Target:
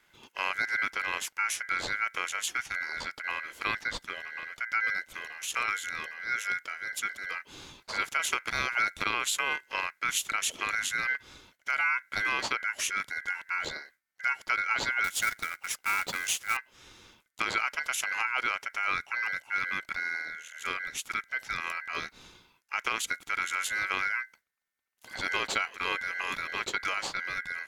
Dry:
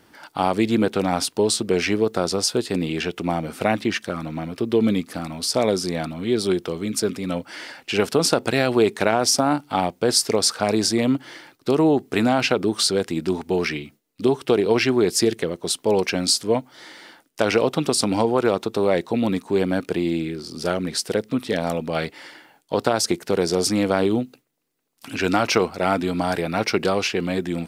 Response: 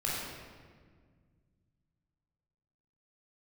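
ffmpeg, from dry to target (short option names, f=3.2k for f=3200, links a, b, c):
-filter_complex "[0:a]aeval=exprs='val(0)*sin(2*PI*1800*n/s)':c=same,asettb=1/sr,asplit=3[a][b][c];[a]atrim=end=15.044[d];[b]atrim=start=15.04:end=16.57,asetpts=PTS-STARTPTS,afade=t=in:d=0.004:c=qsin,afade=t=out:st=1.526:d=0.004:c=qsin,acrusher=bits=2:mode=log:mix=0:aa=0.000001[e];[c]atrim=start=16.566[f];[d][e]acrossfade=d=0.004:c1=hsin:c2=qsin[g];[g][f]acrossfade=d=0.004:c1=qsin:c2=hsin,volume=-8dB"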